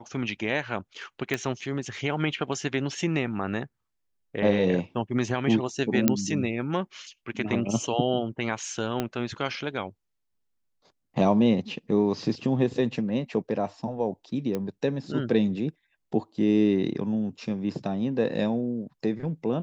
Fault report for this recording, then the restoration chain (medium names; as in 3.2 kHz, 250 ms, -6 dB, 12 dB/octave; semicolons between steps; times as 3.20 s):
1.34 s: pop -13 dBFS
6.08 s: pop -5 dBFS
9.00 s: pop -13 dBFS
14.55 s: pop -17 dBFS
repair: de-click